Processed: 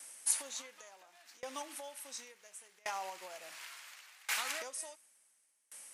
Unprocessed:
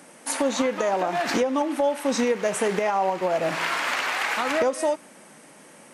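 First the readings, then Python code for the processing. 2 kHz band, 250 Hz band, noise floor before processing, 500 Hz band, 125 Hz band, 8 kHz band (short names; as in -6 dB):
-16.5 dB, -32.5 dB, -50 dBFS, -27.5 dB, under -35 dB, -5.0 dB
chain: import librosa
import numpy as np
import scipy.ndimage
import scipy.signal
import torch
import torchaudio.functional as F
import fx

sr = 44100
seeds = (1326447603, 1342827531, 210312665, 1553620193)

y = np.diff(x, prepend=0.0)
y = fx.tremolo_decay(y, sr, direction='decaying', hz=0.7, depth_db=29)
y = y * librosa.db_to_amplitude(3.5)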